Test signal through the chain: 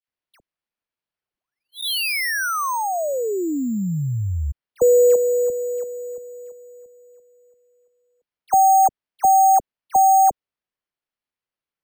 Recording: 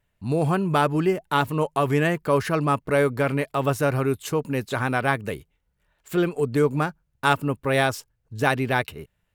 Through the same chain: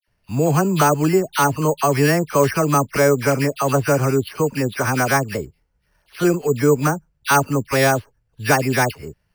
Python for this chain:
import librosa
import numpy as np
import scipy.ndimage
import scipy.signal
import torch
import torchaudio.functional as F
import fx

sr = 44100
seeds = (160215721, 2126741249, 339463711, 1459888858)

y = fx.dispersion(x, sr, late='lows', ms=77.0, hz=1700.0)
y = np.repeat(scipy.signal.resample_poly(y, 1, 6), 6)[:len(y)]
y = y * librosa.db_to_amplitude(5.0)